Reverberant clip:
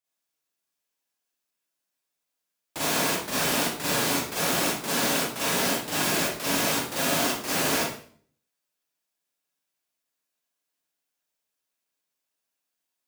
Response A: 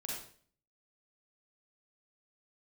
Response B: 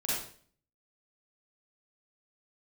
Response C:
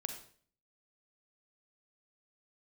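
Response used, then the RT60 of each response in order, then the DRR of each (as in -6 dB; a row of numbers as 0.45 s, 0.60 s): B; 0.50 s, 0.50 s, 0.50 s; -4.0 dB, -8.5 dB, 5.5 dB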